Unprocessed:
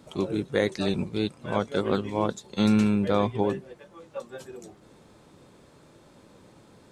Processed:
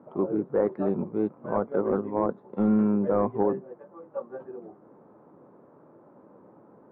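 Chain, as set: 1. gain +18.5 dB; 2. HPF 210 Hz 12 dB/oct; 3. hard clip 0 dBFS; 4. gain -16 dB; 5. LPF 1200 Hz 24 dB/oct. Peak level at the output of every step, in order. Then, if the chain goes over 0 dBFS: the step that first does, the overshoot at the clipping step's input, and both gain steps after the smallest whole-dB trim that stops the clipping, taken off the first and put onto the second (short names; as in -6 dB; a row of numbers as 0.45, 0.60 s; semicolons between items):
+10.5, +9.5, 0.0, -16.0, -14.5 dBFS; step 1, 9.5 dB; step 1 +8.5 dB, step 4 -6 dB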